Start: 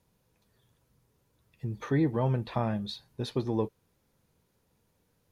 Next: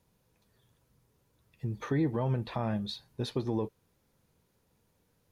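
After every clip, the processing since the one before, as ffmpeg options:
ffmpeg -i in.wav -af "alimiter=limit=-20.5dB:level=0:latency=1:release=90" out.wav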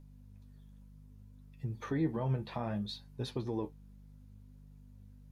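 ffmpeg -i in.wav -af "aeval=exprs='val(0)+0.00398*(sin(2*PI*50*n/s)+sin(2*PI*2*50*n/s)/2+sin(2*PI*3*50*n/s)/3+sin(2*PI*4*50*n/s)/4+sin(2*PI*5*50*n/s)/5)':channel_layout=same,flanger=delay=6.9:depth=7.7:regen=51:speed=0.64:shape=sinusoidal" out.wav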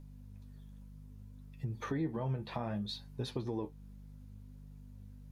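ffmpeg -i in.wav -af "acompressor=threshold=-40dB:ratio=2,volume=3.5dB" out.wav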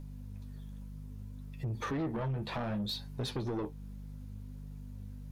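ffmpeg -i in.wav -af "asoftclip=type=tanh:threshold=-37.5dB,volume=7dB" out.wav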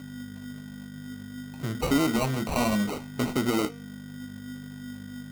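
ffmpeg -i in.wav -af "highpass=160,equalizer=frequency=250:width_type=q:width=4:gain=10,equalizer=frequency=670:width_type=q:width=4:gain=5,equalizer=frequency=1800:width_type=q:width=4:gain=8,equalizer=frequency=4600:width_type=q:width=4:gain=-7,lowpass=frequency=7100:width=0.5412,lowpass=frequency=7100:width=1.3066,acrusher=samples=26:mix=1:aa=0.000001,bandreject=frequency=234.6:width_type=h:width=4,bandreject=frequency=469.2:width_type=h:width=4,bandreject=frequency=703.8:width_type=h:width=4,bandreject=frequency=938.4:width_type=h:width=4,bandreject=frequency=1173:width_type=h:width=4,bandreject=frequency=1407.6:width_type=h:width=4,bandreject=frequency=1642.2:width_type=h:width=4,bandreject=frequency=1876.8:width_type=h:width=4,bandreject=frequency=2111.4:width_type=h:width=4,bandreject=frequency=2346:width_type=h:width=4,bandreject=frequency=2580.6:width_type=h:width=4,bandreject=frequency=2815.2:width_type=h:width=4,bandreject=frequency=3049.8:width_type=h:width=4,bandreject=frequency=3284.4:width_type=h:width=4,bandreject=frequency=3519:width_type=h:width=4,bandreject=frequency=3753.6:width_type=h:width=4,bandreject=frequency=3988.2:width_type=h:width=4,bandreject=frequency=4222.8:width_type=h:width=4,bandreject=frequency=4457.4:width_type=h:width=4,bandreject=frequency=4692:width_type=h:width=4,bandreject=frequency=4926.6:width_type=h:width=4,bandreject=frequency=5161.2:width_type=h:width=4,bandreject=frequency=5395.8:width_type=h:width=4,bandreject=frequency=5630.4:width_type=h:width=4,bandreject=frequency=5865:width_type=h:width=4,bandreject=frequency=6099.6:width_type=h:width=4,bandreject=frequency=6334.2:width_type=h:width=4,bandreject=frequency=6568.8:width_type=h:width=4,volume=8dB" out.wav

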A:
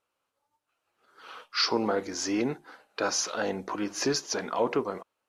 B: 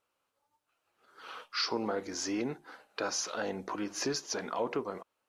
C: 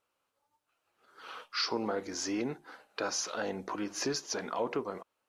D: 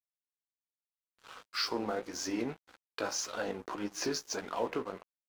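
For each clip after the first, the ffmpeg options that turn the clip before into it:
ffmpeg -i in.wav -af "acompressor=threshold=-40dB:ratio=1.5" out.wav
ffmpeg -i in.wav -af anull out.wav
ffmpeg -i in.wav -af "flanger=delay=9.4:depth=9.6:regen=43:speed=1.8:shape=sinusoidal,aeval=exprs='sgn(val(0))*max(abs(val(0))-0.00266,0)':channel_layout=same,volume=4dB" out.wav

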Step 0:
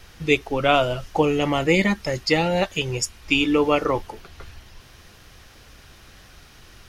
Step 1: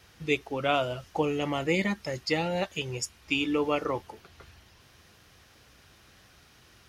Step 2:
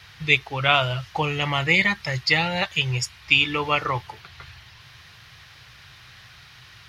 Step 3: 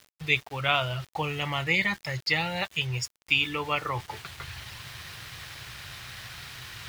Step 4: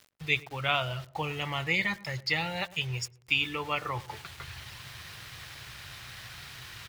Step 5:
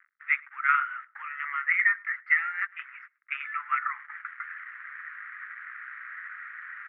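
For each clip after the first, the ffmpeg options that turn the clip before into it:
ffmpeg -i in.wav -af "highpass=70,volume=-8dB" out.wav
ffmpeg -i in.wav -af "equalizer=frequency=125:width_type=o:width=1:gain=12,equalizer=frequency=250:width_type=o:width=1:gain=-10,equalizer=frequency=500:width_type=o:width=1:gain=-4,equalizer=frequency=1000:width_type=o:width=1:gain=5,equalizer=frequency=2000:width_type=o:width=1:gain=8,equalizer=frequency=4000:width_type=o:width=1:gain=9,equalizer=frequency=8000:width_type=o:width=1:gain=-3,volume=3dB" out.wav
ffmpeg -i in.wav -af "areverse,acompressor=mode=upward:threshold=-23dB:ratio=2.5,areverse,aeval=exprs='val(0)*gte(abs(val(0)),0.0141)':channel_layout=same,volume=-6dB" out.wav
ffmpeg -i in.wav -filter_complex "[0:a]asplit=2[link_01][link_02];[link_02]adelay=106,lowpass=frequency=920:poles=1,volume=-16.5dB,asplit=2[link_03][link_04];[link_04]adelay=106,lowpass=frequency=920:poles=1,volume=0.41,asplit=2[link_05][link_06];[link_06]adelay=106,lowpass=frequency=920:poles=1,volume=0.41,asplit=2[link_07][link_08];[link_08]adelay=106,lowpass=frequency=920:poles=1,volume=0.41[link_09];[link_01][link_03][link_05][link_07][link_09]amix=inputs=5:normalize=0,volume=-3dB" out.wav
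ffmpeg -i in.wav -filter_complex "[0:a]asplit=2[link_01][link_02];[link_02]acrusher=bits=4:dc=4:mix=0:aa=0.000001,volume=-3.5dB[link_03];[link_01][link_03]amix=inputs=2:normalize=0,asuperpass=centerf=1600:order=8:qfactor=1.9,volume=7.5dB" out.wav

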